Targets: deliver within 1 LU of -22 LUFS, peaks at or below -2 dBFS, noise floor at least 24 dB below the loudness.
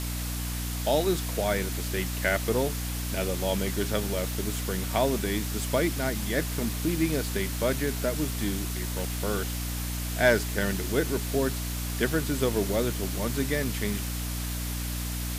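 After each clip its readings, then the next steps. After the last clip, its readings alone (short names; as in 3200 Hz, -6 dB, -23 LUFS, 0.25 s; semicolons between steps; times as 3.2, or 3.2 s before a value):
hum 60 Hz; harmonics up to 300 Hz; hum level -30 dBFS; noise floor -32 dBFS; noise floor target -53 dBFS; loudness -28.5 LUFS; peak -9.0 dBFS; loudness target -22.0 LUFS
-> notches 60/120/180/240/300 Hz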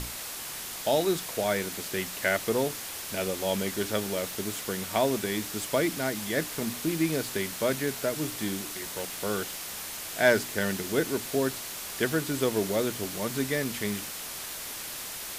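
hum none; noise floor -38 dBFS; noise floor target -54 dBFS
-> denoiser 16 dB, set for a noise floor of -38 dBFS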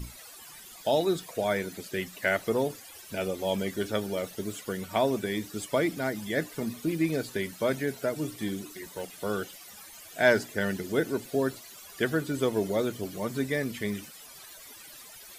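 noise floor -48 dBFS; noise floor target -54 dBFS
-> denoiser 6 dB, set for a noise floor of -48 dBFS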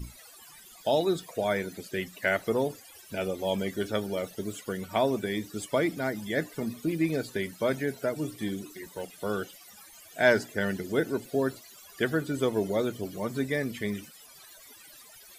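noise floor -52 dBFS; noise floor target -54 dBFS
-> denoiser 6 dB, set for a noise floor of -52 dBFS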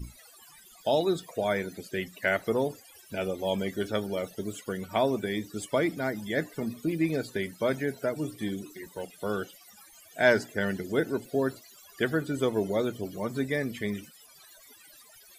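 noise floor -55 dBFS; loudness -30.5 LUFS; peak -9.5 dBFS; loudness target -22.0 LUFS
-> gain +8.5 dB; limiter -2 dBFS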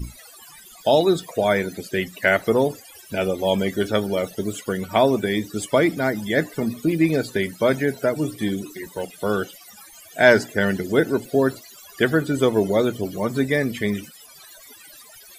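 loudness -22.0 LUFS; peak -2.0 dBFS; noise floor -46 dBFS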